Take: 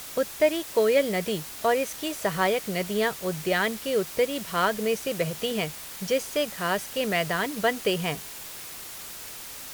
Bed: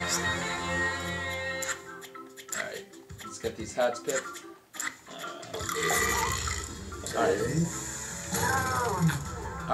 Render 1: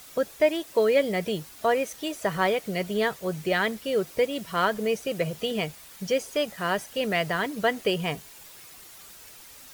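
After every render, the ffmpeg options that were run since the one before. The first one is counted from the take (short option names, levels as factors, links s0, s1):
-af "afftdn=nr=9:nf=-40"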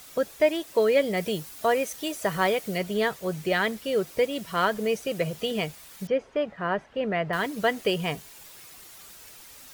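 -filter_complex "[0:a]asettb=1/sr,asplit=3[s0][s1][s2];[s0]atrim=end=1.174[s3];[s1]atrim=start=1.17:end=2.78,asetpts=PTS-STARTPTS,afade=t=in:d=0.004:c=qsin,afade=t=out:st=1.606:d=0.004:c=qsin,highshelf=f=6400:g=5[s4];[s2]atrim=start=2.776[s5];[s3][s4]acrossfade=d=0.004:c1=hsin:c2=qsin[s6];[s6][s5]acrossfade=d=0.004:c1=qsin:c2=hsin,asettb=1/sr,asplit=3[s7][s8][s9];[s7]atrim=end=6.074[s10];[s8]atrim=start=6.07:end=7.33,asetpts=PTS-STARTPTS,afade=t=in:d=0.004:c=qsin,afade=t=out:st=1.256:d=0.004:c=qsin,lowpass=1800[s11];[s9]atrim=start=7.326[s12];[s10][s11]acrossfade=d=0.004:c1=hsin:c2=qsin[s13];[s13][s12]acrossfade=d=0.004:c1=qsin:c2=hsin"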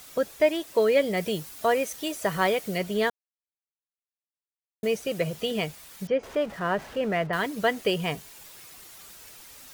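-filter_complex "[0:a]asettb=1/sr,asplit=3[s0][s1][s2];[s0]atrim=end=6.234[s3];[s1]atrim=start=6.23:end=7.27,asetpts=PTS-STARTPTS,afade=t=in:d=0.004:c=qsin,afade=t=out:st=1.036:d=0.004:c=qsin,aeval=exprs='val(0)+0.5*0.00944*sgn(val(0))':c=same[s4];[s2]atrim=start=7.266[s5];[s3][s4]acrossfade=d=0.004:c1=hsin:c2=qsin[s6];[s6][s5]acrossfade=d=0.004:c1=qsin:c2=hsin,asplit=3[s7][s8][s9];[s7]atrim=end=3.1,asetpts=PTS-STARTPTS,afade=t=out:st=3.096:d=0.004:c=hsin[s10];[s8]atrim=start=3.1:end=4.83,asetpts=PTS-STARTPTS,volume=0[s11];[s9]atrim=start=4.83,asetpts=PTS-STARTPTS,afade=t=in:d=0.004:c=hsin[s12];[s10][s11][s12]concat=n=3:v=0:a=1"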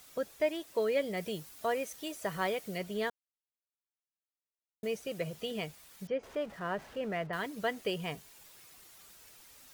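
-af "volume=0.355"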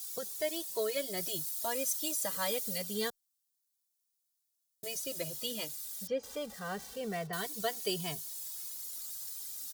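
-filter_complex "[0:a]aexciter=amount=6.2:drive=3.6:freq=3600,asplit=2[s0][s1];[s1]adelay=2.2,afreqshift=-0.28[s2];[s0][s2]amix=inputs=2:normalize=1"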